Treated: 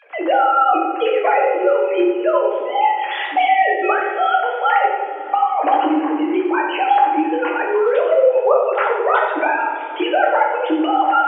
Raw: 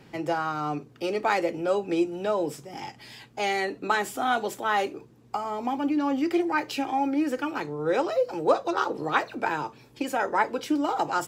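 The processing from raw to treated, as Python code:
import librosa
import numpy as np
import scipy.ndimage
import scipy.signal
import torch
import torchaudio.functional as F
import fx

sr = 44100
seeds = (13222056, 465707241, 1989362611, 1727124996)

y = fx.sine_speech(x, sr)
y = fx.recorder_agc(y, sr, target_db=-14.5, rise_db_per_s=27.0, max_gain_db=30)
y = scipy.signal.sosfilt(scipy.signal.butter(2, 450.0, 'highpass', fs=sr, output='sos'), y)
y = fx.echo_filtered(y, sr, ms=90, feedback_pct=66, hz=1500.0, wet_db=-6)
y = fx.rev_double_slope(y, sr, seeds[0], early_s=0.61, late_s=3.2, knee_db=-19, drr_db=-1.5)
y = fx.band_squash(y, sr, depth_pct=40)
y = y * 10.0 ** (3.0 / 20.0)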